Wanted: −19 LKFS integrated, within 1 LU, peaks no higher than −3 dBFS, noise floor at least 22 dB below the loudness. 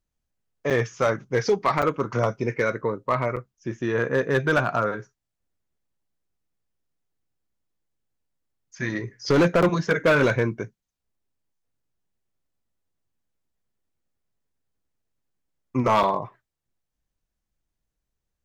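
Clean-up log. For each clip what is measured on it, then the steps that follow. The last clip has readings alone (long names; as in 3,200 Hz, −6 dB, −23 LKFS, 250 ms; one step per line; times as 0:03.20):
share of clipped samples 0.5%; peaks flattened at −13.5 dBFS; number of dropouts 5; longest dropout 6.4 ms; integrated loudness −23.5 LKFS; sample peak −13.5 dBFS; target loudness −19.0 LKFS
→ clipped peaks rebuilt −13.5 dBFS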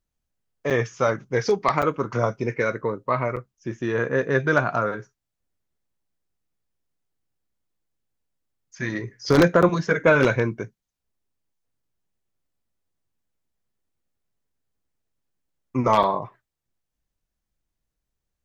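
share of clipped samples 0.0%; number of dropouts 5; longest dropout 6.4 ms
→ repair the gap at 0:00.70/0:01.82/0:03.36/0:09.62/0:16.03, 6.4 ms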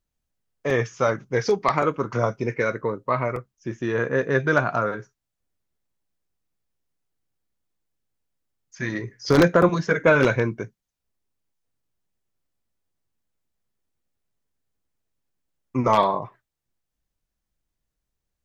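number of dropouts 0; integrated loudness −22.5 LKFS; sample peak −4.5 dBFS; target loudness −19.0 LKFS
→ level +3.5 dB
brickwall limiter −3 dBFS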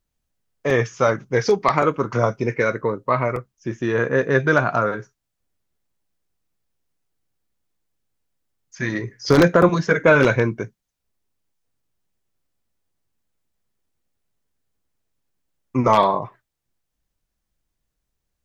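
integrated loudness −19.5 LKFS; sample peak −3.0 dBFS; background noise floor −79 dBFS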